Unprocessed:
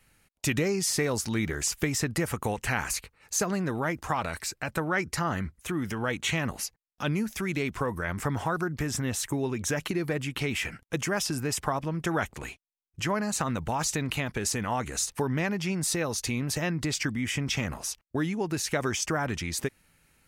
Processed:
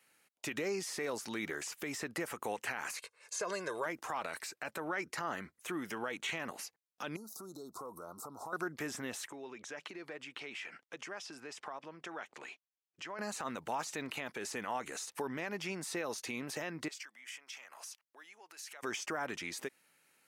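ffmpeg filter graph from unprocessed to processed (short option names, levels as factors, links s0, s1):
-filter_complex "[0:a]asettb=1/sr,asplit=3[s0][s1][s2];[s0]atrim=end=2.984[s3];[s1]atrim=start=2.98:end=3.86,asetpts=PTS-STARTPTS,afade=t=in:d=0.004:c=qsin,afade=t=out:st=0.876:d=0.004:c=qsin,lowpass=f=10000:w=0.5412,lowpass=f=10000:w=1.3066,bass=f=250:g=-7,treble=f=4000:g=8,aecho=1:1:1.9:0.69,atrim=end_sample=38808[s4];[s2]atrim=start=3.856[s5];[s3][s4]acrossfade=d=0.004:c1=hsin:c2=qsin[s6];[s6][s5]acrossfade=d=0.004:c1=qsin:c2=hsin,asettb=1/sr,asplit=3[s7][s8][s9];[s7]atrim=end=7.164[s10];[s8]atrim=start=7.16:end=8.53,asetpts=PTS-STARTPTS,afade=t=in:d=0.004:c=qsin,afade=t=out:st=1.366:d=0.004:c=qsin,asuperstop=centerf=2300:order=20:qfactor=0.94,highshelf=f=11000:g=9,acompressor=threshold=0.0178:ratio=12:attack=3.2:release=140:knee=1:detection=peak[s11];[s9]atrim=start=8.526[s12];[s10][s11]acrossfade=d=0.004:c1=hsin:c2=qsin[s13];[s13][s12]acrossfade=d=0.004:c1=qsin:c2=hsin,asettb=1/sr,asplit=3[s14][s15][s16];[s14]atrim=end=9.284[s17];[s15]atrim=start=9.28:end=13.19,asetpts=PTS-STARTPTS,afade=t=in:d=0.004:c=qsin,afade=t=out:st=3.906:d=0.004:c=qsin,equalizer=f=130:w=0.4:g=-6,acompressor=threshold=0.0112:ratio=2.5:attack=3.2:release=140:knee=1:detection=peak,highpass=100,lowpass=5300[s18];[s16]atrim=start=13.186[s19];[s17][s18]acrossfade=d=0.004:c1=hsin:c2=qsin[s20];[s20][s19]acrossfade=d=0.004:c1=qsin:c2=hsin,asettb=1/sr,asplit=3[s21][s22][s23];[s21]atrim=end=16.884[s24];[s22]atrim=start=16.88:end=18.83,asetpts=PTS-STARTPTS,afade=t=in:d=0.004:c=qsin,afade=t=out:st=1.946:d=0.004:c=qsin,acompressor=threshold=0.0141:ratio=12:attack=3.2:release=140:knee=1:detection=peak,highpass=870,bandreject=f=3700:w=23[s25];[s23]atrim=start=18.826[s26];[s24][s25]acrossfade=d=0.004:c1=hsin:c2=qsin[s27];[s27][s26]acrossfade=d=0.004:c1=qsin:c2=hsin,highpass=340,acrossover=split=2900[s28][s29];[s29]acompressor=threshold=0.0141:ratio=4:attack=1:release=60[s30];[s28][s30]amix=inputs=2:normalize=0,alimiter=limit=0.075:level=0:latency=1:release=73,volume=0.631"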